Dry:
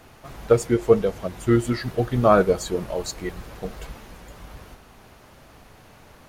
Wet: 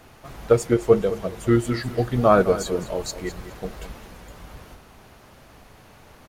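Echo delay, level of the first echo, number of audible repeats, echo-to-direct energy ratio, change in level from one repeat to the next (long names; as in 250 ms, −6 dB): 209 ms, −13.5 dB, 2, −13.0 dB, −12.0 dB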